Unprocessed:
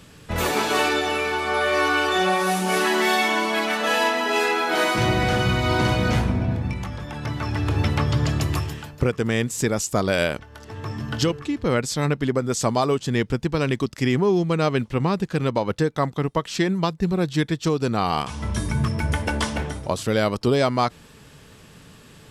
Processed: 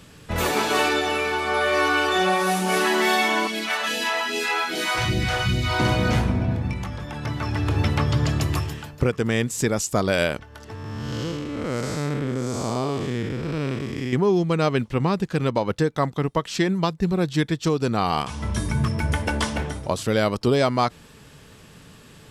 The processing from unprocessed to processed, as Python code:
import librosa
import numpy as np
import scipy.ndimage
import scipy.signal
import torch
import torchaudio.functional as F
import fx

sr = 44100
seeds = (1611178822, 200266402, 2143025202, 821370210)

y = fx.phaser_stages(x, sr, stages=2, low_hz=200.0, high_hz=1100.0, hz=2.5, feedback_pct=25, at=(3.47, 5.8))
y = fx.spec_blur(y, sr, span_ms=274.0, at=(10.75, 14.13))